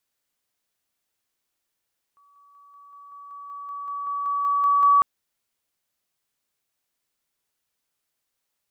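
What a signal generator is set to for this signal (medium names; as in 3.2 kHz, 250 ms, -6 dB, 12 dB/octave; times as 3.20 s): level ladder 1.14 kHz -55 dBFS, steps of 3 dB, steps 15, 0.19 s 0.00 s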